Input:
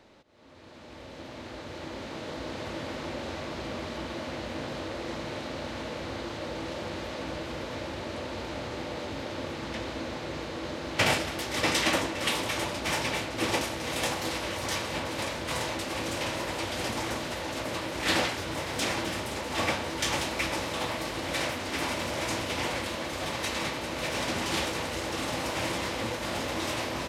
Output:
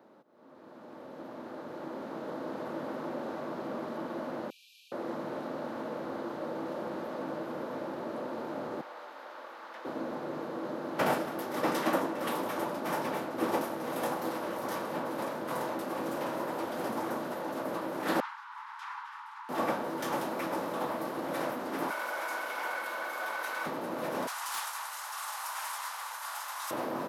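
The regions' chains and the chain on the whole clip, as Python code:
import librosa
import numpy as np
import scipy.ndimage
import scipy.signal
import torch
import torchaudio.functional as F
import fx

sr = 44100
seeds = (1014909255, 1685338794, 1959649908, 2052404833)

y = fx.chain(x, sr, fx.brickwall_bandpass(low_hz=2300.0, high_hz=14000.0),
    fx.comb(ms=6.3, depth=0.59), at=(4.5, 4.92))
y = fx.chain(y, sr, fx.highpass(hz=1000.0, slope=12),
    fx.peak_eq(hz=11000.0, db=-6.0, octaves=1.7), at=(8.81, 9.85))
y = fx.chain(y, sr, fx.steep_highpass(hz=880.0, slope=96),
    fx.spacing_loss(db_at_10k=22), at=(18.2, 19.49))
y = fx.chain(y, sr, fx.highpass(hz=830.0, slope=12),
    fx.small_body(hz=(1500.0, 2200.0), ring_ms=85, db=16),
    fx.env_flatten(amount_pct=50), at=(21.9, 23.66))
y = fx.chain(y, sr, fx.steep_highpass(hz=890.0, slope=36),
    fx.peak_eq(hz=8300.0, db=12.0, octaves=1.7),
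    fx.clip_hard(threshold_db=-18.5), at=(24.27, 26.71))
y = scipy.signal.sosfilt(scipy.signal.butter(4, 170.0, 'highpass', fs=sr, output='sos'), y)
y = fx.band_shelf(y, sr, hz=4200.0, db=-14.5, octaves=2.5)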